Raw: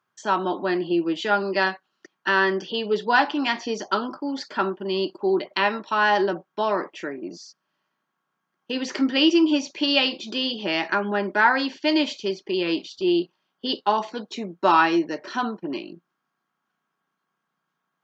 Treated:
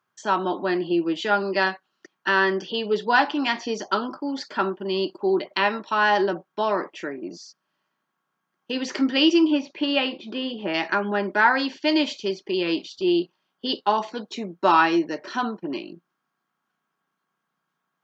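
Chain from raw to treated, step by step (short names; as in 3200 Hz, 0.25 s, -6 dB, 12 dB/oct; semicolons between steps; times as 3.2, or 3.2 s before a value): 9.47–10.73 LPF 3000 Hz -> 2000 Hz 12 dB/oct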